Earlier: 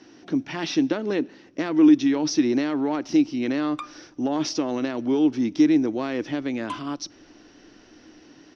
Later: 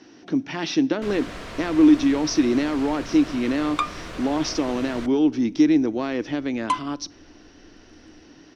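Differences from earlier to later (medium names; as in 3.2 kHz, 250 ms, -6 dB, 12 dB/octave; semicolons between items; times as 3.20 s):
first sound: unmuted; second sound +10.0 dB; reverb: on, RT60 0.75 s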